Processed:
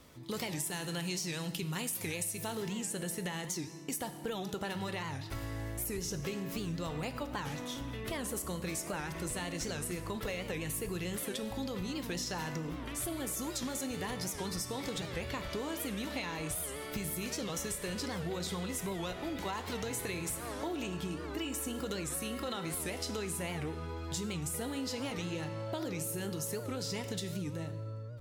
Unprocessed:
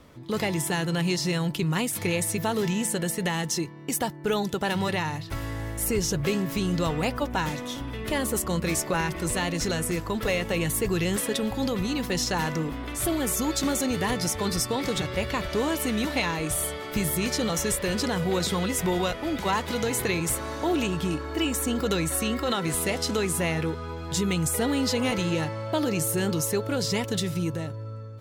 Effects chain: treble shelf 3.6 kHz +10.5 dB, from 2.55 s +2.5 dB; reverberation RT60 0.90 s, pre-delay 5 ms, DRR 10 dB; compression, threshold -27 dBFS, peak gain reduction 11 dB; warped record 78 rpm, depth 160 cents; trim -7 dB

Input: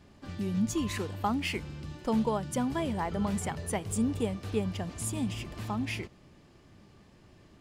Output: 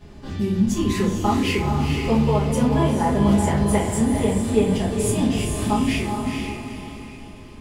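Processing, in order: gain riding within 3 dB 0.5 s; on a send: echo that smears into a reverb 453 ms, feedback 42%, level -4 dB; on the sum: simulated room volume 37 m³, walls mixed, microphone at 1.4 m

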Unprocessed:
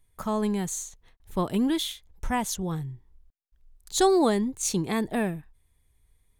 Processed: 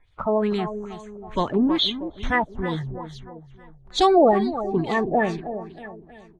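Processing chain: coarse spectral quantiser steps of 30 dB; on a send: feedback delay 318 ms, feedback 49%, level -11.5 dB; on the sum: LFO low-pass sine 2.3 Hz 550–3900 Hz; trim +3.5 dB

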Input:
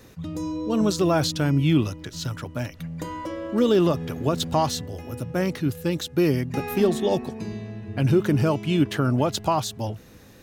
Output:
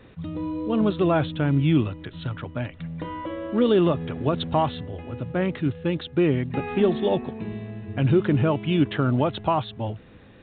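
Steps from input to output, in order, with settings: 1.25–1.87 s: distance through air 140 m; µ-law 64 kbps 8 kHz

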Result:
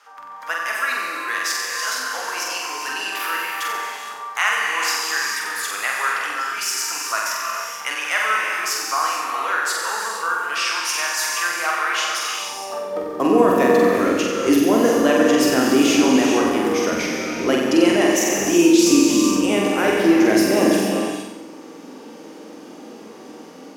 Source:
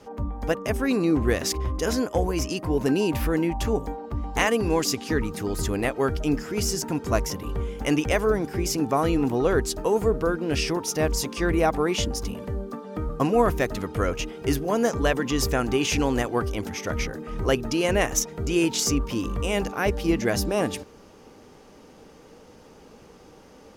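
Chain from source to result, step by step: peaking EQ 430 Hz -3 dB 0.77 oct; hum notches 60/120/180/240 Hz; gated-style reverb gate 490 ms flat, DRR 1.5 dB; in parallel at +1 dB: peak limiter -16 dBFS, peak gain reduction 9 dB; on the sum: level rider gain up to 4 dB; on a send: flutter echo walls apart 7.9 m, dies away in 0.81 s; on the sum: high-pass sweep 1.3 kHz -> 280 Hz, 12.30–13.42 s; trim -6 dB

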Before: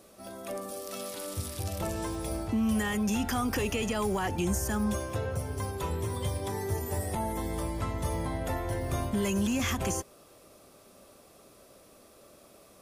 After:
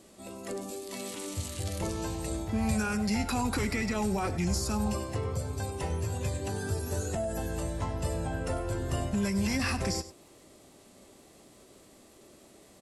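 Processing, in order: crackle 110 per s -61 dBFS; formant shift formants -4 st; delay 98 ms -15 dB

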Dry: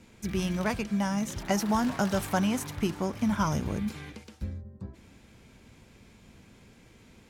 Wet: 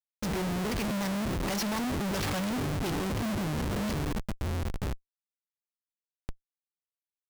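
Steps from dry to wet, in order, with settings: LFO low-pass square 1.4 Hz 420–5000 Hz; Schmitt trigger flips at -41.5 dBFS

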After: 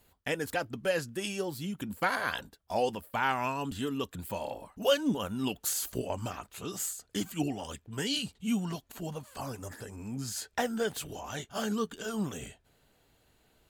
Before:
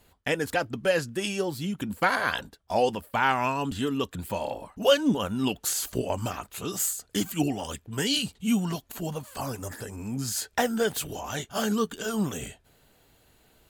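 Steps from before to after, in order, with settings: treble shelf 12 kHz +7 dB, from 6.07 s -6.5 dB; trim -5.5 dB

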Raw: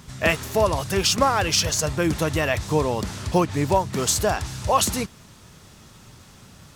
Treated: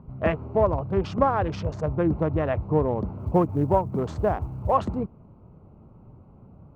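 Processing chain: local Wiener filter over 25 samples; low-pass 1.2 kHz 12 dB/octave; 3.18–4.76 s: short-mantissa float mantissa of 6-bit

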